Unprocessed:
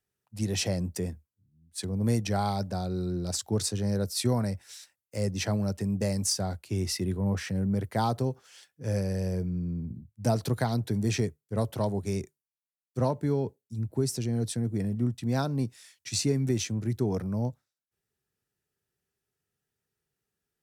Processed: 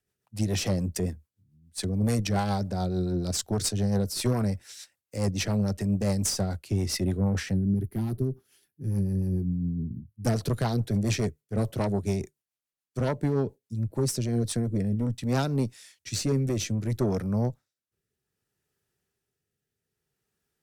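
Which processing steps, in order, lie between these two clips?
Chebyshev shaper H 5 -16 dB, 6 -19 dB, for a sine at -14 dBFS; time-frequency box 7.54–10.26 s, 420–9400 Hz -16 dB; rotary cabinet horn 7 Hz, later 0.6 Hz, at 13.95 s

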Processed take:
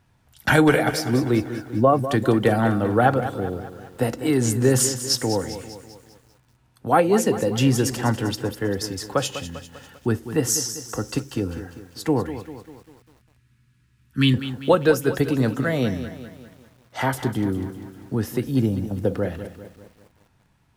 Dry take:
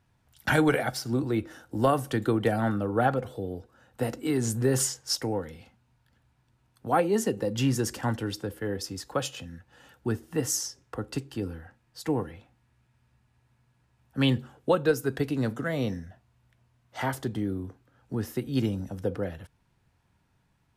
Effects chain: 1.46–2.09 s: spectral contrast enhancement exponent 1.6; 12.30–14.34 s: Butterworth band-stop 670 Hz, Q 0.62; 18.51–19.05 s: peaking EQ 2.8 kHz -9.5 dB 2.7 oct; bit-crushed delay 198 ms, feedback 55%, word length 9-bit, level -11.5 dB; trim +6.5 dB

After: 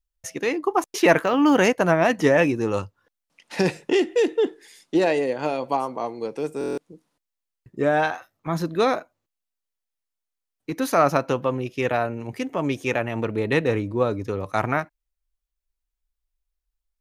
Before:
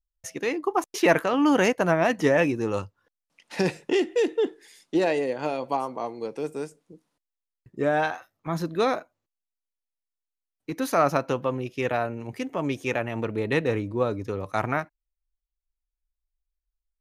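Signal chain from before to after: buffer glitch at 6.59 s, samples 1024, times 7; 1.17–1.59 s: decimation joined by straight lines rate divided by 2×; trim +3 dB

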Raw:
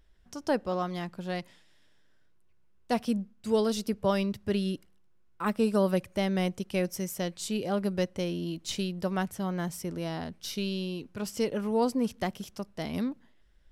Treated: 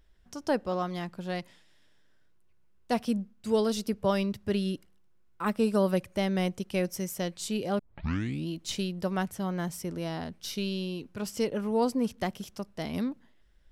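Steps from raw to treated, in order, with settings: 7.79 s: tape start 0.69 s; 11.47–12.18 s: tape noise reduction on one side only decoder only

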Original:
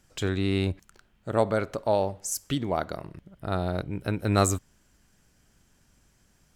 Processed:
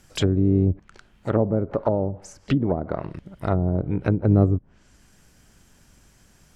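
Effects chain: harmony voices +7 st -17 dB; low-pass that closes with the level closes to 360 Hz, closed at -23 dBFS; trim +8 dB

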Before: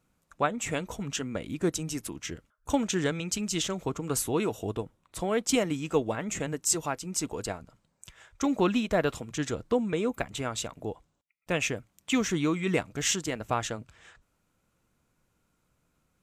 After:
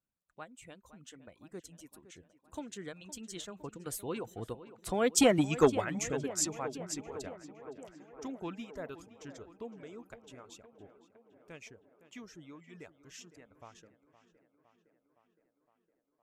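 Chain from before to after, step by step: Doppler pass-by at 5.47 s, 20 m/s, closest 5.2 m; reverb removal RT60 0.95 s; on a send: tape echo 513 ms, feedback 75%, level -14 dB, low-pass 2.7 kHz; on the sum: transformer saturation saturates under 520 Hz; trim +5.5 dB

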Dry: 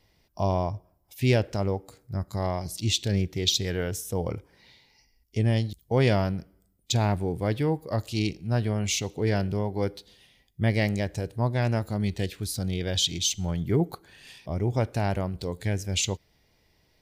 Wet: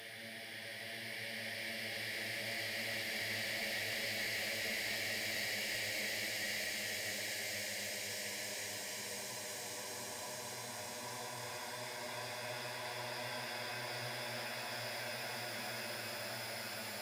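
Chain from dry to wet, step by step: Paulstretch 12×, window 1.00 s, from 10.42 s; differentiator; one-sided clip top -42.5 dBFS; trim +5.5 dB

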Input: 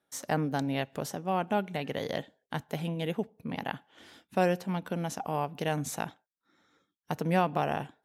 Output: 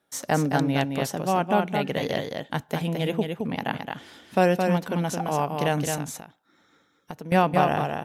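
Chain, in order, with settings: 5.97–7.32 s: compression 4:1, threshold -43 dBFS, peak gain reduction 13.5 dB; delay 218 ms -5 dB; trim +6 dB

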